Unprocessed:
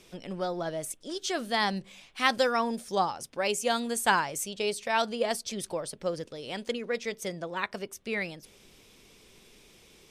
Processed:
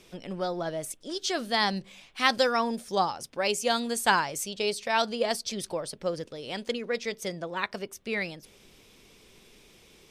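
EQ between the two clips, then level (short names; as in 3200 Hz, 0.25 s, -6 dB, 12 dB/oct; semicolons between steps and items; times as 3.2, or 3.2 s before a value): bell 8500 Hz -2 dB 1.4 oct; dynamic EQ 4700 Hz, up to +5 dB, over -48 dBFS, Q 1.8; +1.0 dB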